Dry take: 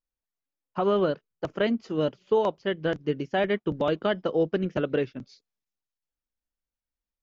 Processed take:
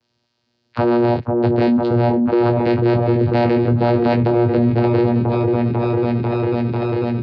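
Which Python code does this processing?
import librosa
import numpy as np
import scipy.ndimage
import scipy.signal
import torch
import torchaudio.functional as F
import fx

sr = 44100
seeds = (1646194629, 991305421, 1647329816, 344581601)

p1 = fx.freq_compress(x, sr, knee_hz=1600.0, ratio=1.5)
p2 = fx.rider(p1, sr, range_db=10, speed_s=0.5)
p3 = fx.leveller(p2, sr, passes=3)
p4 = fx.vocoder(p3, sr, bands=8, carrier='saw', carrier_hz=119.0)
p5 = fx.lowpass_res(p4, sr, hz=4400.0, q=3.3)
p6 = fx.doubler(p5, sr, ms=20.0, db=-7.0)
p7 = p6 + fx.echo_opening(p6, sr, ms=495, hz=750, octaves=1, feedback_pct=70, wet_db=-6, dry=0)
y = fx.env_flatten(p7, sr, amount_pct=70)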